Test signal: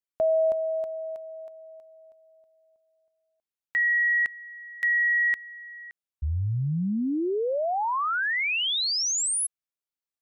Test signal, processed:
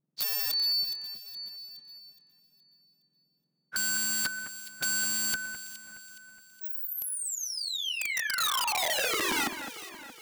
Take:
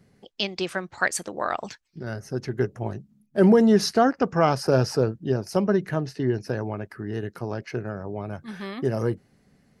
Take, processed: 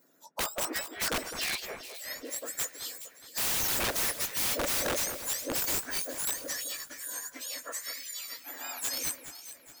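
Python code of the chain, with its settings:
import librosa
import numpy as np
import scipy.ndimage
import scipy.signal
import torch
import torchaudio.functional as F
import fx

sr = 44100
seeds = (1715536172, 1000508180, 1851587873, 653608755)

y = fx.octave_mirror(x, sr, pivot_hz=1700.0)
y = (np.mod(10.0 ** (24.5 / 20.0) * y + 1.0, 2.0) - 1.0) / 10.0 ** (24.5 / 20.0)
y = fx.echo_alternate(y, sr, ms=209, hz=2400.0, feedback_pct=66, wet_db=-9)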